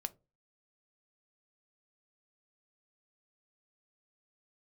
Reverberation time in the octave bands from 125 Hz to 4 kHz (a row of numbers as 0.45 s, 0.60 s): 0.40 s, 0.35 s, 0.35 s, 0.25 s, 0.15 s, 0.15 s